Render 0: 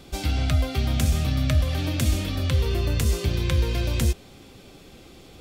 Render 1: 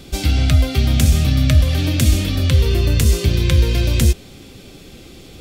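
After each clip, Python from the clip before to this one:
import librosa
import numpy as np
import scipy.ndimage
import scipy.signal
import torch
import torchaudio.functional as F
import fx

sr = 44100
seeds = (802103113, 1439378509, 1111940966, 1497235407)

y = fx.peak_eq(x, sr, hz=920.0, db=-6.5, octaves=1.6)
y = y * 10.0 ** (8.5 / 20.0)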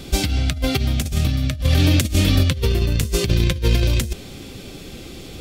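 y = fx.over_compress(x, sr, threshold_db=-17.0, ratio=-0.5)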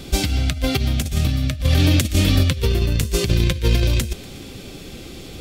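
y = fx.echo_wet_highpass(x, sr, ms=120, feedback_pct=51, hz=1600.0, wet_db=-16)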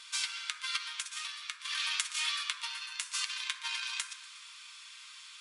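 y = fx.brickwall_bandpass(x, sr, low_hz=900.0, high_hz=11000.0)
y = fx.rev_fdn(y, sr, rt60_s=1.1, lf_ratio=1.05, hf_ratio=0.3, size_ms=38.0, drr_db=5.0)
y = y * 10.0 ** (-8.0 / 20.0)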